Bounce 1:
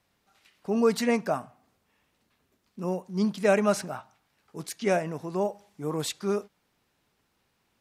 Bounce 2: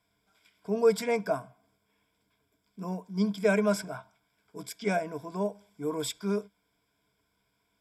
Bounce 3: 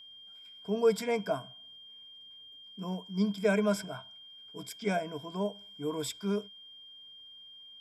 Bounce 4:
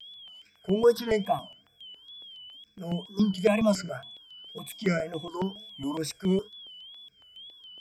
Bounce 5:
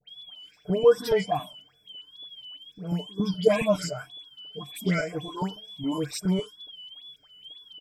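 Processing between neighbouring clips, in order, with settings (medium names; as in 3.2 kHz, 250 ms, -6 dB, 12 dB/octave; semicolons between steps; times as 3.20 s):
rippled EQ curve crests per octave 1.7, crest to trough 14 dB; trim -5 dB
bass shelf 160 Hz +4 dB; whistle 3.2 kHz -46 dBFS; trim -3 dB
wow and flutter 120 cents; stepped phaser 7.2 Hz 290–5000 Hz; trim +6.5 dB
comb 6.7 ms, depth 64%; phase dispersion highs, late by 90 ms, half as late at 1.8 kHz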